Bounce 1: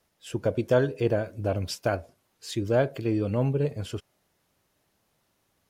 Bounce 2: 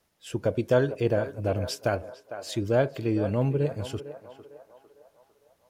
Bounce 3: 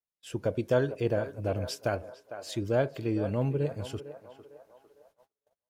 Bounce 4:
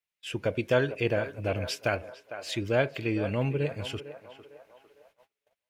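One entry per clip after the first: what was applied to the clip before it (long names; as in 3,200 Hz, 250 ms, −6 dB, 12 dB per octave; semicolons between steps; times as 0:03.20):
feedback echo with a band-pass in the loop 453 ms, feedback 54%, band-pass 870 Hz, level −10 dB
noise gate −58 dBFS, range −28 dB; level −3.5 dB
parametric band 2,400 Hz +13 dB 1.2 octaves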